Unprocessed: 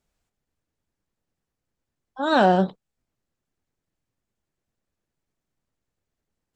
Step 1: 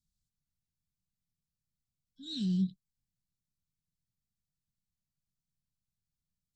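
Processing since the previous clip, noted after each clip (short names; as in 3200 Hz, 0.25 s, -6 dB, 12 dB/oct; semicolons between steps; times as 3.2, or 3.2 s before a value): elliptic band-stop 170–4000 Hz, stop band 60 dB; bell 500 Hz +13.5 dB 1.9 oct; gain -6.5 dB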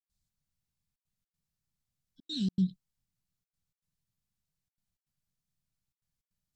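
step gate ".xxxxxxxxx.xx" 157 bpm -60 dB; vibrato 9.4 Hz 41 cents; gain +2.5 dB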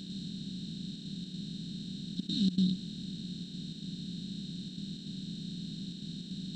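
per-bin compression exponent 0.2; gain -2 dB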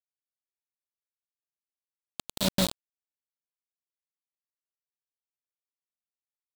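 bit-crush 4-bit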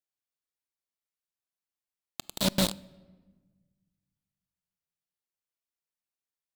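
vibrato 15 Hz 37 cents; on a send at -20 dB: reverb RT60 1.4 s, pre-delay 6 ms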